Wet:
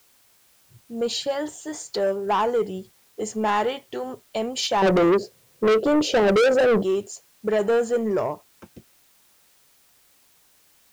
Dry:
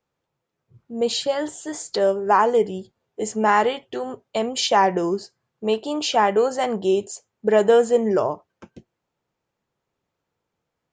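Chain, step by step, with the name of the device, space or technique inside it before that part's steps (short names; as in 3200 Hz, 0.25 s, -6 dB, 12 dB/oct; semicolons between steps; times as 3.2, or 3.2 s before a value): 4.82–6.83 resonant low shelf 740 Hz +12 dB, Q 3; open-reel tape (soft clip -13.5 dBFS, distortion -3 dB; bell 86 Hz +3.5 dB; white noise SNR 35 dB); gain -2 dB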